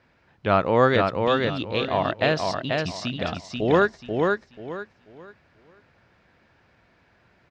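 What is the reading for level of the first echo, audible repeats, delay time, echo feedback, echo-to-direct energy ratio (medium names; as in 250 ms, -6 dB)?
-3.5 dB, 3, 486 ms, 27%, -3.0 dB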